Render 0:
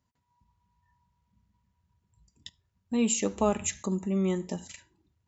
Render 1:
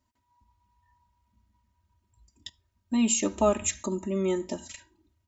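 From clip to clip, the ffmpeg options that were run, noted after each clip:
-af "aecho=1:1:3.2:0.89"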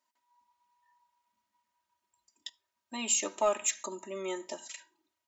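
-filter_complex "[0:a]highpass=600,asplit=2[a][b];[b]aeval=exprs='0.251*sin(PI/2*1.78*val(0)/0.251)':c=same,volume=-11.5dB[c];[a][c]amix=inputs=2:normalize=0,volume=-5.5dB"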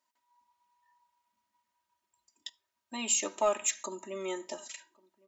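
-filter_complex "[0:a]asplit=2[a][b];[b]adelay=1108,volume=-26dB,highshelf=f=4k:g=-24.9[c];[a][c]amix=inputs=2:normalize=0"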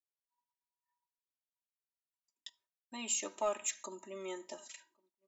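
-af "agate=range=-33dB:threshold=-60dB:ratio=3:detection=peak,volume=-6.5dB"

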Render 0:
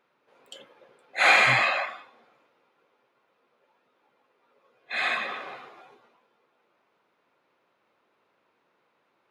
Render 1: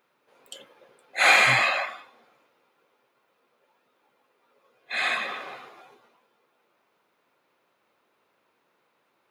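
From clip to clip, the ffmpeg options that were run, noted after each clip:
-af "highshelf=f=7k:g=11.5"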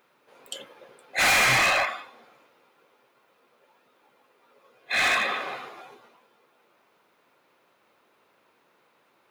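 -af "volume=24dB,asoftclip=hard,volume=-24dB,volume=5.5dB"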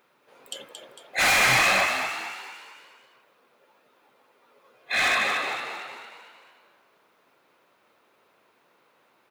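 -filter_complex "[0:a]asplit=7[a][b][c][d][e][f][g];[b]adelay=226,afreqshift=66,volume=-7dB[h];[c]adelay=452,afreqshift=132,volume=-13.4dB[i];[d]adelay=678,afreqshift=198,volume=-19.8dB[j];[e]adelay=904,afreqshift=264,volume=-26.1dB[k];[f]adelay=1130,afreqshift=330,volume=-32.5dB[l];[g]adelay=1356,afreqshift=396,volume=-38.9dB[m];[a][h][i][j][k][l][m]amix=inputs=7:normalize=0"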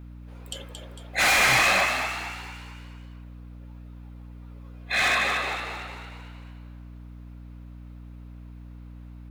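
-af "aeval=exprs='val(0)+0.00891*(sin(2*PI*60*n/s)+sin(2*PI*2*60*n/s)/2+sin(2*PI*3*60*n/s)/3+sin(2*PI*4*60*n/s)/4+sin(2*PI*5*60*n/s)/5)':c=same"

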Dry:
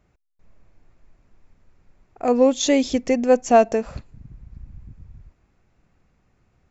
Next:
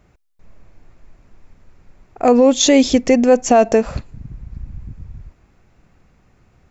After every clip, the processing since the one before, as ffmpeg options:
-af "alimiter=level_in=11.5dB:limit=-1dB:release=50:level=0:latency=1,volume=-2.5dB"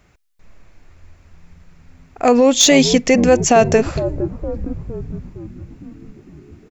-filter_complex "[0:a]acrossover=split=1300[a][b];[a]asplit=9[c][d][e][f][g][h][i][j][k];[d]adelay=461,afreqshift=-86,volume=-9dB[l];[e]adelay=922,afreqshift=-172,volume=-13.2dB[m];[f]adelay=1383,afreqshift=-258,volume=-17.3dB[n];[g]adelay=1844,afreqshift=-344,volume=-21.5dB[o];[h]adelay=2305,afreqshift=-430,volume=-25.6dB[p];[i]adelay=2766,afreqshift=-516,volume=-29.8dB[q];[j]adelay=3227,afreqshift=-602,volume=-33.9dB[r];[k]adelay=3688,afreqshift=-688,volume=-38.1dB[s];[c][l][m][n][o][p][q][r][s]amix=inputs=9:normalize=0[t];[b]acontrast=71[u];[t][u]amix=inputs=2:normalize=0,volume=-1dB"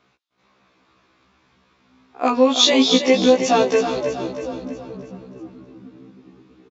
-filter_complex "[0:a]highpass=220,equalizer=f=610:t=q:w=4:g=-3,equalizer=f=1.1k:t=q:w=4:g=6,equalizer=f=1.9k:t=q:w=4:g=-4,equalizer=f=3.6k:t=q:w=4:g=7,lowpass=f=5.6k:w=0.5412,lowpass=f=5.6k:w=1.3066,asplit=2[a][b];[b]aecho=0:1:322|644|966|1288|1610|1932:0.355|0.177|0.0887|0.0444|0.0222|0.0111[c];[a][c]amix=inputs=2:normalize=0,afftfilt=real='re*1.73*eq(mod(b,3),0)':imag='im*1.73*eq(mod(b,3),0)':win_size=2048:overlap=0.75,volume=-1dB"

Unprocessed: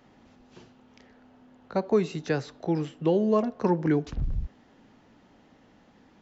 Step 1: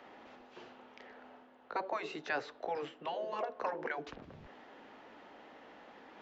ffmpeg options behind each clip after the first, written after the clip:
-filter_complex "[0:a]afftfilt=real='re*lt(hypot(re,im),0.251)':imag='im*lt(hypot(re,im),0.251)':win_size=1024:overlap=0.75,acrossover=split=350 3700:gain=0.0891 1 0.178[a][b][c];[a][b][c]amix=inputs=3:normalize=0,areverse,acompressor=mode=upward:threshold=-46dB:ratio=2.5,areverse"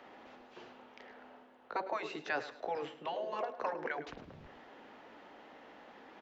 -af "aecho=1:1:106|212|318:0.188|0.0546|0.0158"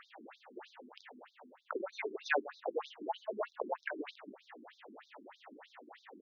-af "afftfilt=real='re*between(b*sr/1024,260*pow(5000/260,0.5+0.5*sin(2*PI*3.2*pts/sr))/1.41,260*pow(5000/260,0.5+0.5*sin(2*PI*3.2*pts/sr))*1.41)':imag='im*between(b*sr/1024,260*pow(5000/260,0.5+0.5*sin(2*PI*3.2*pts/sr))/1.41,260*pow(5000/260,0.5+0.5*sin(2*PI*3.2*pts/sr))*1.41)':win_size=1024:overlap=0.75,volume=7.5dB"

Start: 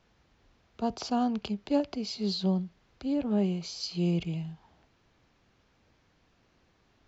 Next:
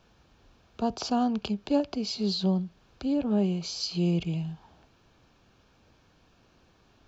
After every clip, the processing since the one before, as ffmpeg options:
-filter_complex "[0:a]bandreject=f=2k:w=5.5,asplit=2[a][b];[b]acompressor=threshold=-36dB:ratio=6,volume=-1.5dB[c];[a][c]amix=inputs=2:normalize=0"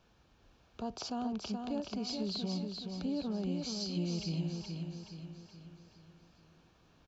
-filter_complex "[0:a]alimiter=limit=-24dB:level=0:latency=1:release=137,asplit=2[a][b];[b]aecho=0:1:424|848|1272|1696|2120|2544:0.562|0.276|0.135|0.0662|0.0324|0.0159[c];[a][c]amix=inputs=2:normalize=0,volume=-5.5dB"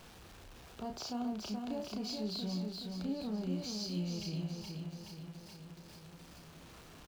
-filter_complex "[0:a]aeval=exprs='val(0)+0.5*0.00447*sgn(val(0))':c=same,asplit=2[a][b];[b]adelay=33,volume=-5.5dB[c];[a][c]amix=inputs=2:normalize=0,volume=-4dB"

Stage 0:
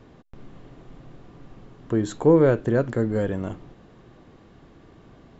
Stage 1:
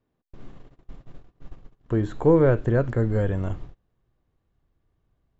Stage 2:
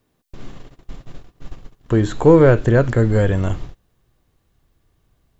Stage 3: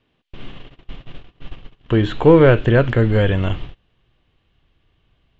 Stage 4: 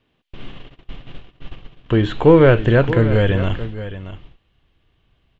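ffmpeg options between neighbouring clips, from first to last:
-filter_complex "[0:a]agate=range=-26dB:threshold=-42dB:ratio=16:detection=peak,asubboost=boost=5.5:cutoff=100,acrossover=split=2800[a][b];[b]acompressor=threshold=-56dB:ratio=4:attack=1:release=60[c];[a][c]amix=inputs=2:normalize=0"
-filter_complex "[0:a]highshelf=f=2.7k:g=11,asplit=2[a][b];[b]asoftclip=type=tanh:threshold=-24.5dB,volume=-11.5dB[c];[a][c]amix=inputs=2:normalize=0,volume=6dB"
-af "lowpass=f=3k:t=q:w=3.5"
-af "aecho=1:1:624:0.224"

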